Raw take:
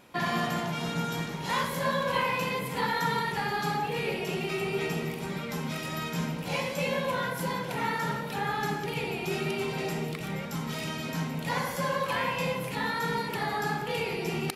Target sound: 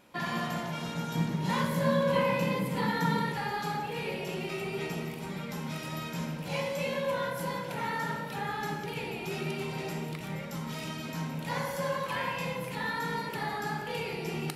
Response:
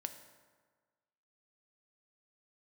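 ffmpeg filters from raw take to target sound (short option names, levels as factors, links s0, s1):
-filter_complex "[0:a]asettb=1/sr,asplit=3[s0][s1][s2];[s0]atrim=end=1.154[s3];[s1]atrim=start=1.15:end=3.33,asetpts=PTS-STARTPTS,afade=t=in:d=0.004:c=qsin,afade=t=out:st=2.176:d=0.004:c=qsin,equalizer=f=200:t=o:w=1.6:g=10.5[s4];[s2]atrim=start=3.326[s5];[s3][s4]acrossfade=d=0.004:c1=hsin:c2=qsin[s6];[s6][s5]acrossfade=d=0.004:c1=qsin:c2=hsin[s7];[1:a]atrim=start_sample=2205[s8];[s7][s8]afir=irnorm=-1:irlink=0,volume=0.841"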